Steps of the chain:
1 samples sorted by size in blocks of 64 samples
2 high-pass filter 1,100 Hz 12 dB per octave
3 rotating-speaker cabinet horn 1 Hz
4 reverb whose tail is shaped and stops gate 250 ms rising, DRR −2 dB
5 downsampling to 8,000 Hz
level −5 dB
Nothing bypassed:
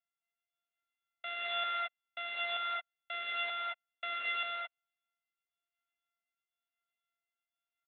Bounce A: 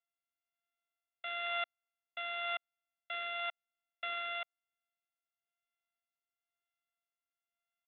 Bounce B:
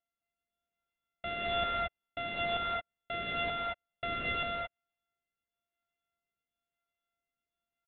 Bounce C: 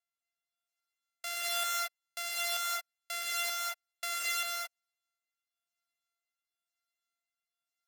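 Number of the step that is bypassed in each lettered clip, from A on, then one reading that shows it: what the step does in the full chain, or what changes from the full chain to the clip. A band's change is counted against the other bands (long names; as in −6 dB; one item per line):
4, change in momentary loudness spread −1 LU
2, 500 Hz band +9.0 dB
5, 4 kHz band +3.0 dB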